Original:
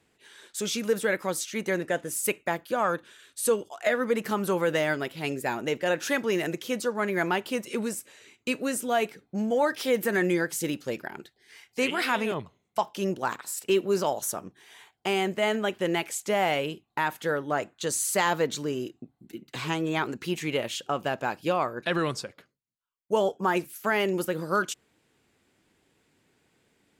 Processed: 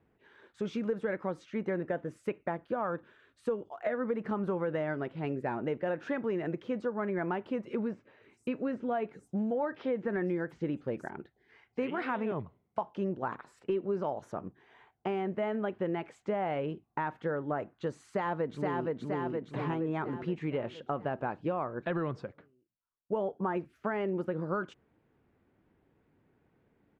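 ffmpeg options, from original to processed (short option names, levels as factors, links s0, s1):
-filter_complex "[0:a]asettb=1/sr,asplit=3[s0][s1][s2];[s0]atrim=end=0.674[s3];[s1]atrim=start=0.67:end=1.17,asetpts=PTS-STARTPTS,afade=t=in:d=0.004:c=qsin,afade=t=out:st=0.496:d=0.004:c=qsin,highshelf=f=6900:g=6[s4];[s2]atrim=start=1.166[s5];[s3][s4]acrossfade=d=0.004:c1=hsin:c2=qsin[s6];[s6][s5]acrossfade=d=0.004:c1=qsin:c2=hsin,asettb=1/sr,asplit=3[s7][s8][s9];[s7]atrim=end=7.764[s10];[s8]atrim=start=7.76:end=11.11,asetpts=PTS-STARTPTS,afade=t=in:d=0.004:c=qsin,afade=t=out:st=3.346:d=0.004:c=qsin,acrossover=split=5800[s11][s12];[s12]adelay=470[s13];[s11][s13]amix=inputs=2:normalize=0,atrim=end_sample=147735[s14];[s9]atrim=start=11.106[s15];[s10][s14]acrossfade=d=0.004:c1=hsin:c2=qsin[s16];[s16][s15]acrossfade=d=0.004:c1=qsin:c2=hsin,asplit=2[s17][s18];[s18]afade=t=in:st=18.06:d=0.01,afade=t=out:st=18.91:d=0.01,aecho=0:1:470|940|1410|1880|2350|2820|3290|3760:0.749894|0.412442|0.226843|0.124764|0.06862|0.037741|0.0207576|0.0114167[s19];[s17][s19]amix=inputs=2:normalize=0,lowpass=1400,lowshelf=f=180:g=6,acompressor=threshold=0.0447:ratio=4,volume=0.794"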